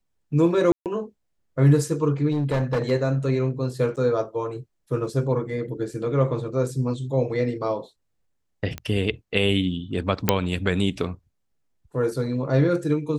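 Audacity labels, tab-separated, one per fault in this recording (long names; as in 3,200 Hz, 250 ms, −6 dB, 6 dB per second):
0.720000	0.860000	drop-out 138 ms
2.310000	2.920000	clipping −19 dBFS
3.960000	3.970000	drop-out 8.6 ms
8.780000	8.780000	click −17 dBFS
10.290000	10.290000	click −1 dBFS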